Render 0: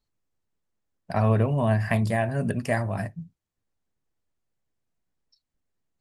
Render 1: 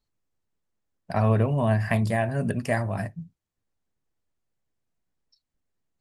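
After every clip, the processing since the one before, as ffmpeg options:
-af anull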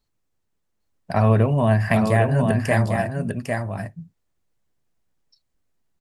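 -af "aecho=1:1:801:0.596,volume=1.68"

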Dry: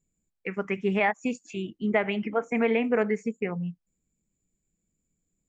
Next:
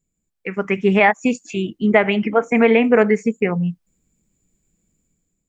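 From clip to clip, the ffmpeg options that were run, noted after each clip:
-af "dynaudnorm=f=160:g=7:m=2.99,volume=1.26"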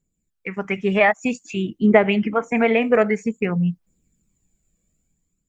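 -af "aphaser=in_gain=1:out_gain=1:delay=1.8:decay=0.41:speed=0.52:type=triangular,volume=0.708"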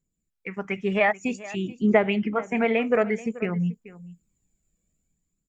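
-af "aecho=1:1:433:0.126,volume=0.562"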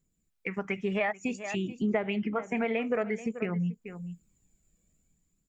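-af "acompressor=threshold=0.0178:ratio=2.5,volume=1.5"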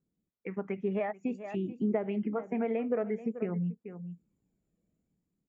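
-af "bandpass=f=330:t=q:w=0.62:csg=0"

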